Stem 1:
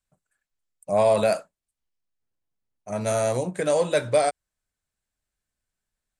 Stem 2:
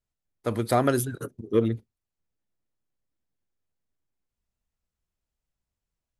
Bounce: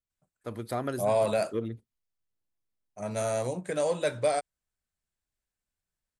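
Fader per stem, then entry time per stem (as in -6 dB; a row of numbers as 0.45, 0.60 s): -6.0, -10.0 dB; 0.10, 0.00 s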